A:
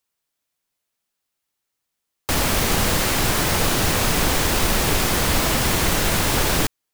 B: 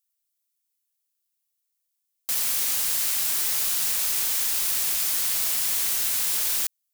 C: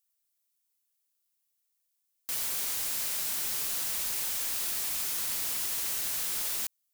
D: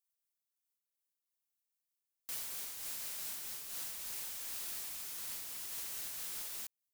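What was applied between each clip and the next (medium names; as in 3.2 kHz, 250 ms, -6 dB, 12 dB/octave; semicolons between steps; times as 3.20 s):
pre-emphasis filter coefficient 0.97; trim -1.5 dB
peak limiter -17.5 dBFS, peak gain reduction 5.5 dB; hard clipper -30 dBFS, distortion -8 dB
random flutter of the level, depth 55%; trim -8 dB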